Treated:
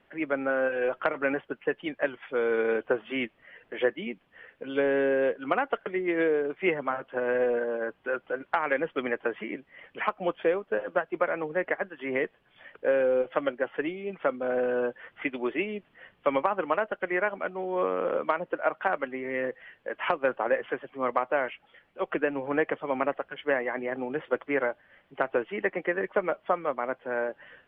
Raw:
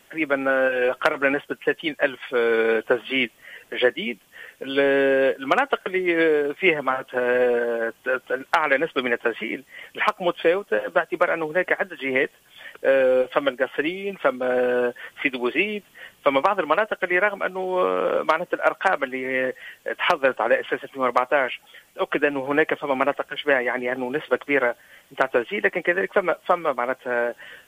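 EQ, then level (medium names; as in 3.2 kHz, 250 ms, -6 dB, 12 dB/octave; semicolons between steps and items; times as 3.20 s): distance through air 480 m; -4.5 dB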